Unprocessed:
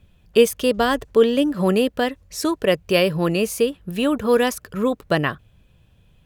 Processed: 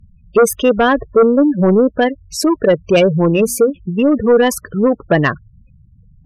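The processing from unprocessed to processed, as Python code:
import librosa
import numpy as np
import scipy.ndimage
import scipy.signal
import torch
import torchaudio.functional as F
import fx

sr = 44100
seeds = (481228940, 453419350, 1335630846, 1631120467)

y = fx.hum_notches(x, sr, base_hz=60, count=4, at=(3.23, 3.7), fade=0.02)
y = fx.spec_gate(y, sr, threshold_db=-15, keep='strong')
y = fx.fold_sine(y, sr, drive_db=5, ceiling_db=-5.0)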